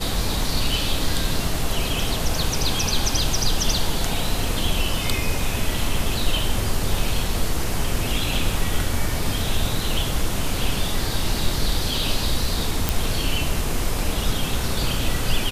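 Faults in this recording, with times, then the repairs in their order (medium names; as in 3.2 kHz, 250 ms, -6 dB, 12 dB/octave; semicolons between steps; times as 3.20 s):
12.89 s: pop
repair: de-click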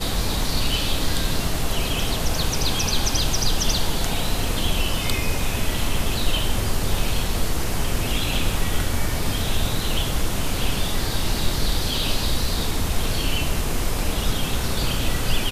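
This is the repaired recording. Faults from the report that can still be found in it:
nothing left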